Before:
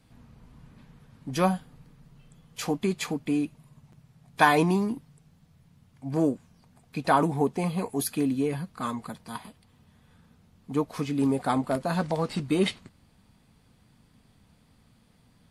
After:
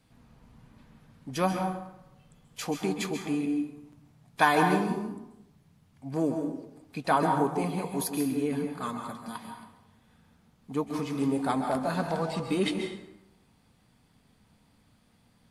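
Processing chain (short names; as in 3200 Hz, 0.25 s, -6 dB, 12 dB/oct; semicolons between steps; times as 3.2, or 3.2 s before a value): low shelf 200 Hz -4 dB; plate-style reverb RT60 0.88 s, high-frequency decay 0.6×, pre-delay 0.12 s, DRR 4 dB; gain -2.5 dB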